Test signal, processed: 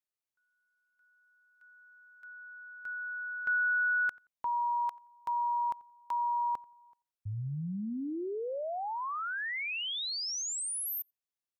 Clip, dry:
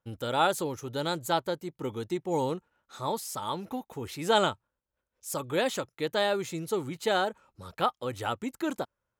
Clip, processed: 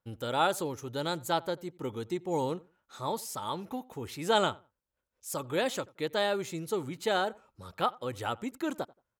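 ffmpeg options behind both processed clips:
-filter_complex "[0:a]asplit=2[a][b];[b]adelay=88,lowpass=f=1.9k:p=1,volume=-22.5dB,asplit=2[c][d];[d]adelay=88,lowpass=f=1.9k:p=1,volume=0.22[e];[a][c][e]amix=inputs=3:normalize=0,volume=-2dB"

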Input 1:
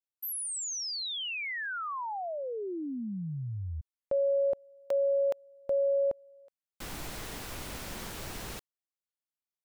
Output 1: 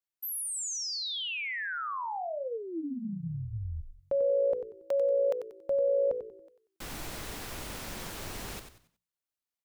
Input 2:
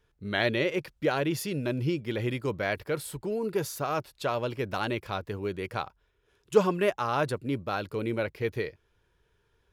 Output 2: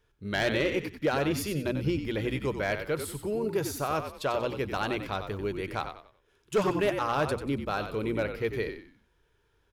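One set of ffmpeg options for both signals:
-filter_complex "[0:a]bandreject=f=60:t=h:w=6,bandreject=f=120:t=h:w=6,bandreject=f=180:t=h:w=6,bandreject=f=240:t=h:w=6,asplit=5[a][b][c][d][e];[b]adelay=93,afreqshift=-57,volume=-8.5dB[f];[c]adelay=186,afreqshift=-114,volume=-18.4dB[g];[d]adelay=279,afreqshift=-171,volume=-28.3dB[h];[e]adelay=372,afreqshift=-228,volume=-38.2dB[i];[a][f][g][h][i]amix=inputs=5:normalize=0,asoftclip=type=hard:threshold=-19.5dB"

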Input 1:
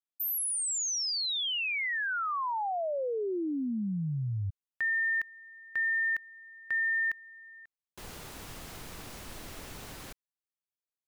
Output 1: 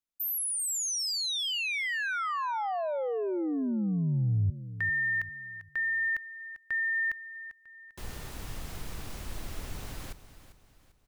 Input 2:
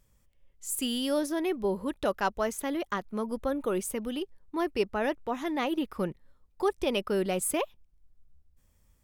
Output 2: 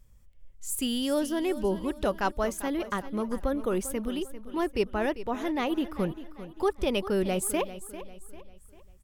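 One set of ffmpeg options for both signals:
-af "lowshelf=f=110:g=12,aecho=1:1:396|792|1188|1584:0.2|0.0798|0.0319|0.0128"

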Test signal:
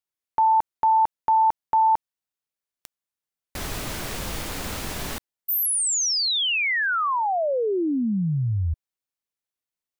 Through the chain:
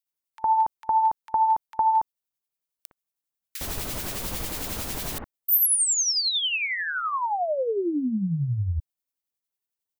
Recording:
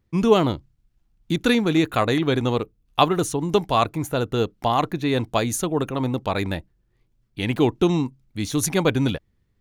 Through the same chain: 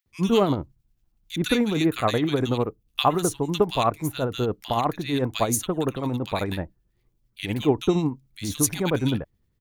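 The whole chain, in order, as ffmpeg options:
-filter_complex "[0:a]highshelf=f=11k:g=9,tremolo=f=11:d=0.49,acrossover=split=1700[a][b];[a]adelay=60[c];[c][b]amix=inputs=2:normalize=0"

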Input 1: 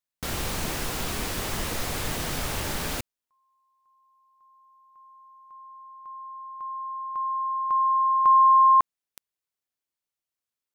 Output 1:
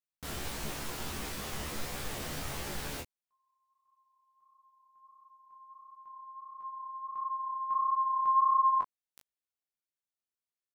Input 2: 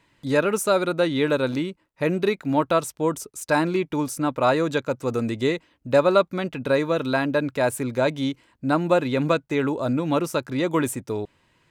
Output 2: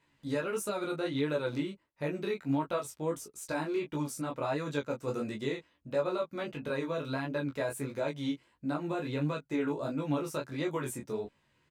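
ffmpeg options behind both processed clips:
-filter_complex "[0:a]alimiter=limit=-15dB:level=0:latency=1:release=182,flanger=delay=19:depth=6.8:speed=1.5,asplit=2[a][b];[b]adelay=14,volume=-4dB[c];[a][c]amix=inputs=2:normalize=0,volume=-7dB"

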